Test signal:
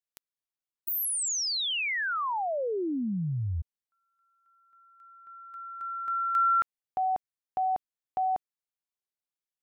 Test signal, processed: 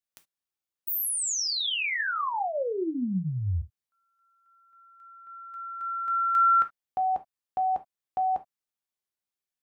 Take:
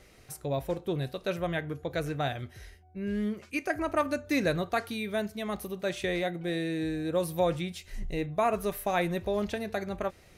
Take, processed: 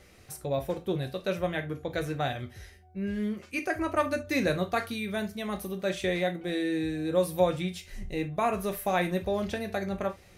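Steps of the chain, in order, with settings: gated-style reverb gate 90 ms falling, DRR 6 dB

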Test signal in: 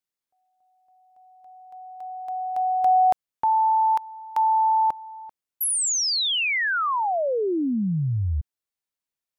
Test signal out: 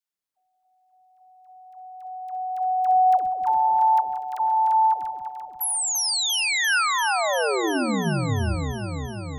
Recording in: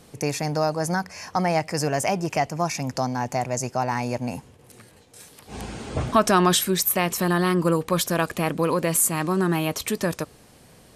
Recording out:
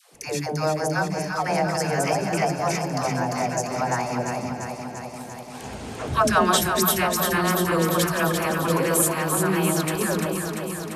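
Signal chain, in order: hum notches 60/120/180/240/300/360 Hz; echo whose repeats swap between lows and highs 172 ms, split 820 Hz, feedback 85%, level -4 dB; dynamic bell 1.5 kHz, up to +5 dB, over -43 dBFS, Q 3.7; phase dispersion lows, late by 142 ms, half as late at 490 Hz; trim -1.5 dB

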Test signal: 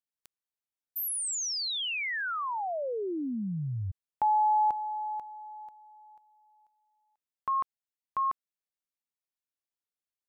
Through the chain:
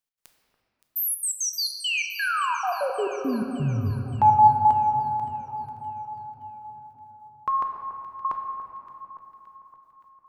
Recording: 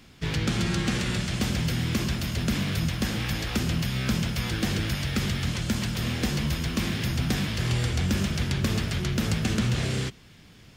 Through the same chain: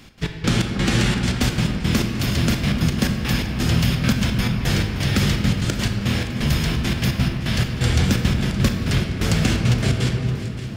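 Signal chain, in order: trance gate "x.x..xx..xxxx.x." 171 bpm -60 dB; echo whose repeats swap between lows and highs 285 ms, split 1.5 kHz, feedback 72%, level -11.5 dB; simulated room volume 140 m³, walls hard, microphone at 0.3 m; trim +6.5 dB

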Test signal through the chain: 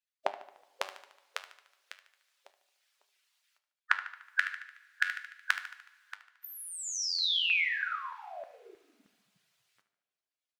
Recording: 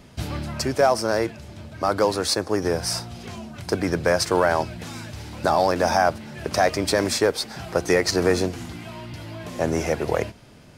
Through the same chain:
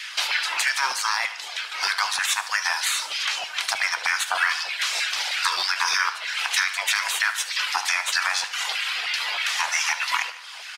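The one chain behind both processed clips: spectral gate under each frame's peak -15 dB weak; frequency weighting D; reverb removal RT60 0.57 s; dynamic bell 980 Hz, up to +5 dB, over -48 dBFS, Q 6.2; compression 4:1, threshold -34 dBFS; flange 0.31 Hz, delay 9.7 ms, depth 1.4 ms, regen +79%; LFO high-pass saw down 3.2 Hz 700–1800 Hz; feedback delay 74 ms, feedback 55%, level -15.5 dB; two-slope reverb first 0.79 s, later 2.9 s, from -18 dB, DRR 13.5 dB; loudness maximiser +23 dB; trim -8 dB

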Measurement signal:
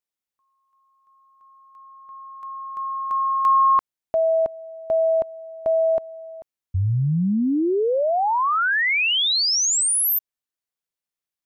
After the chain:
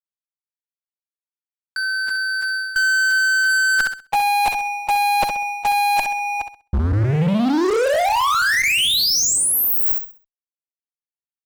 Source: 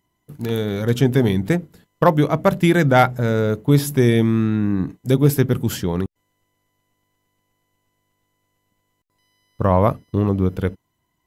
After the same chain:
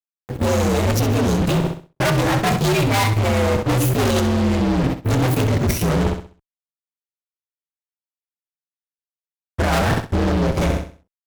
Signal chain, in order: frequency axis rescaled in octaves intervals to 124%; level held to a coarse grid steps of 16 dB; fuzz box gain 42 dB, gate -49 dBFS; flutter echo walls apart 11.2 m, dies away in 0.39 s; reverse; compression 4:1, threshold -26 dBFS; reverse; trim +7.5 dB

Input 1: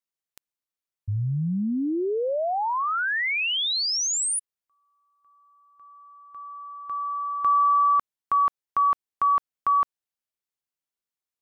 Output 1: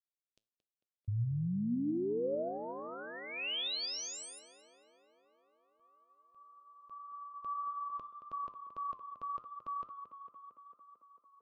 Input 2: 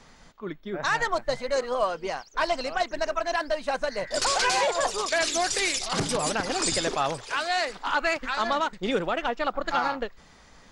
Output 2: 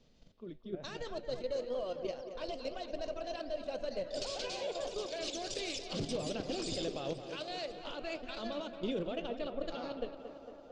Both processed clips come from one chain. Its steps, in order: level held to a coarse grid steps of 10 dB; high-order bell 1.3 kHz -14.5 dB; flange 1.8 Hz, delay 7.8 ms, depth 2.8 ms, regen +84%; distance through air 130 m; on a send: tape echo 225 ms, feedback 81%, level -9 dB, low-pass 2.7 kHz; on the sum: trim +1 dB

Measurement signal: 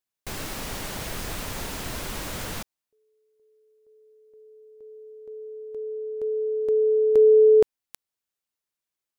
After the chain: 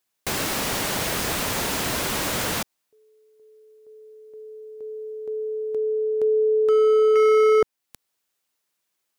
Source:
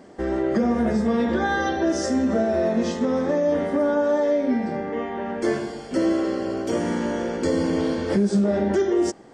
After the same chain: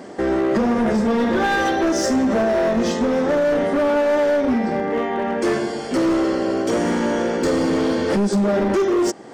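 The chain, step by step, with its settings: high-pass 170 Hz 6 dB/octave; in parallel at +0.5 dB: compression 5:1, threshold -35 dBFS; on the sum: hard clipper -19.5 dBFS; trim +4.5 dB

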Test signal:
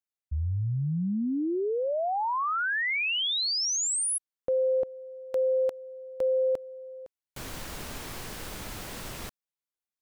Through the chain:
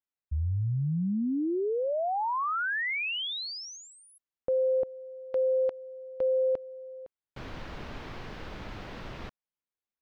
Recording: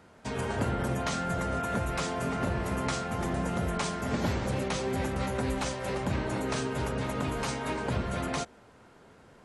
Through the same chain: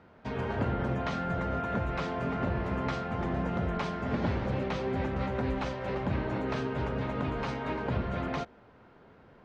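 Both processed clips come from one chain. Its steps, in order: distance through air 250 m

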